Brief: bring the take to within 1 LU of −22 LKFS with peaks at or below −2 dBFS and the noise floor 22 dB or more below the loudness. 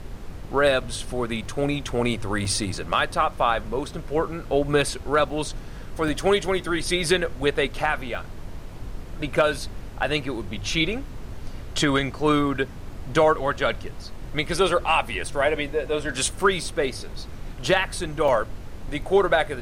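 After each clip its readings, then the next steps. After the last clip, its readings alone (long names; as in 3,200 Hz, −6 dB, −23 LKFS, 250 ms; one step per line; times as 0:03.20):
number of dropouts 6; longest dropout 2.9 ms; background noise floor −38 dBFS; target noise floor −46 dBFS; integrated loudness −24.0 LKFS; sample peak −6.0 dBFS; target loudness −22.0 LKFS
→ repair the gap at 0:01.45/0:02.45/0:05.29/0:06.08/0:08.15/0:18.28, 2.9 ms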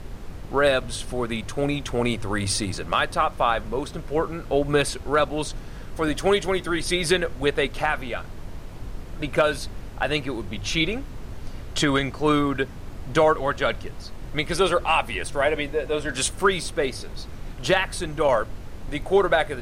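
number of dropouts 0; background noise floor −38 dBFS; target noise floor −46 dBFS
→ noise reduction from a noise print 8 dB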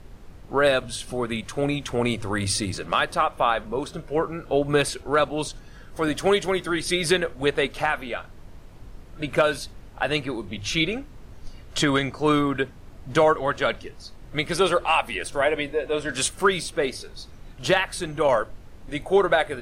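background noise floor −45 dBFS; target noise floor −47 dBFS
→ noise reduction from a noise print 6 dB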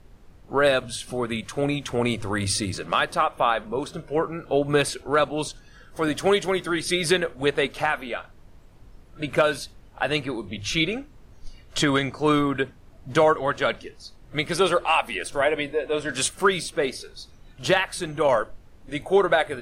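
background noise floor −50 dBFS; integrated loudness −24.5 LKFS; sample peak −6.0 dBFS; target loudness −22.0 LKFS
→ level +2.5 dB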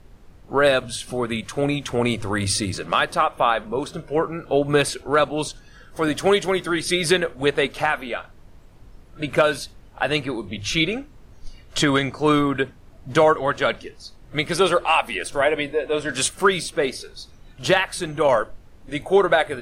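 integrated loudness −22.0 LKFS; sample peak −3.5 dBFS; background noise floor −48 dBFS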